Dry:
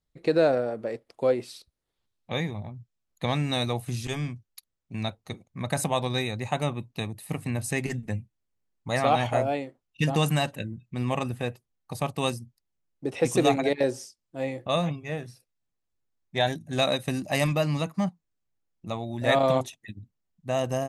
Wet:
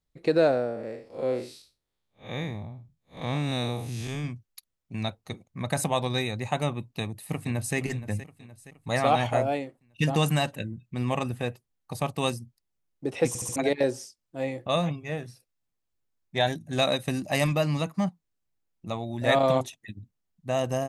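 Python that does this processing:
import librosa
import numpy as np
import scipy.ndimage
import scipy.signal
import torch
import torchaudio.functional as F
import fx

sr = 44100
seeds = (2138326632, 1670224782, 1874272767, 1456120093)

y = fx.spec_blur(x, sr, span_ms=151.0, at=(0.51, 4.23), fade=0.02)
y = fx.echo_throw(y, sr, start_s=6.94, length_s=0.82, ms=470, feedback_pct=55, wet_db=-14.5)
y = fx.edit(y, sr, fx.stutter_over(start_s=13.28, slice_s=0.07, count=4), tone=tone)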